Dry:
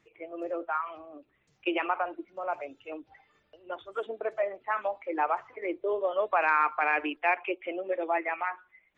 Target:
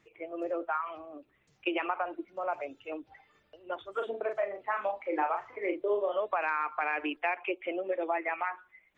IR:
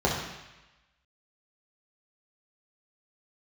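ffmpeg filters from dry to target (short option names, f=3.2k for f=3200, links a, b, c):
-filter_complex "[0:a]acompressor=threshold=-28dB:ratio=5,asettb=1/sr,asplit=3[a][b][c];[a]atrim=end=3.964[d];[b]atrim=start=3.96:end=6.2,asetpts=PTS-STARTPTS,afade=t=in:d=0.004:c=qsin,afade=t=out:st=2.236:d=0.004:c=qsin,asplit=2[e][f];[f]adelay=39,volume=-5.5dB[g];[e][g]amix=inputs=2:normalize=0,atrim=end_sample=98784[h];[c]atrim=start=6.196[i];[d][h]acrossfade=d=0.004:c1=hsin:c2=qsin[j];[j][i]acrossfade=d=0.004:c1=qsin:c2=hsin,volume=1dB"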